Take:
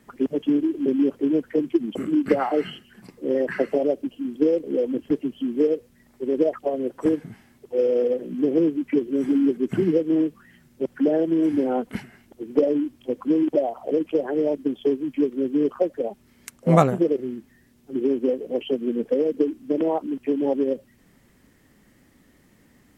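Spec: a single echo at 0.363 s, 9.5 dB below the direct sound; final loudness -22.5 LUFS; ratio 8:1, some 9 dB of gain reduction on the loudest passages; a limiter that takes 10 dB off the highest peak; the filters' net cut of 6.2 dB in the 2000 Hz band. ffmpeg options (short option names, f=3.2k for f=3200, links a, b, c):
-af "equalizer=f=2k:t=o:g=-8,acompressor=threshold=-22dB:ratio=8,alimiter=limit=-22.5dB:level=0:latency=1,aecho=1:1:363:0.335,volume=9dB"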